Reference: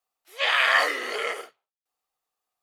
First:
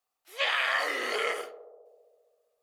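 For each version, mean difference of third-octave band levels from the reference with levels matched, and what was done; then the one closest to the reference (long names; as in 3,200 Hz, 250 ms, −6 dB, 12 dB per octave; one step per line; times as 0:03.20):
3.5 dB: downward compressor 6 to 1, threshold −24 dBFS, peak gain reduction 9 dB
on a send: feedback echo with a band-pass in the loop 66 ms, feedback 82%, band-pass 570 Hz, level −13 dB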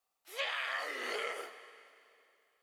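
5.0 dB: coupled-rooms reverb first 0.37 s, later 2.6 s, from −18 dB, DRR 11 dB
downward compressor 10 to 1, threshold −34 dBFS, peak gain reduction 19 dB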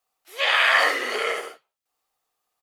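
2.0 dB: ambience of single reflections 66 ms −6 dB, 79 ms −8.5 dB
in parallel at −2 dB: downward compressor, threshold −34 dBFS, peak gain reduction 17.5 dB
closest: third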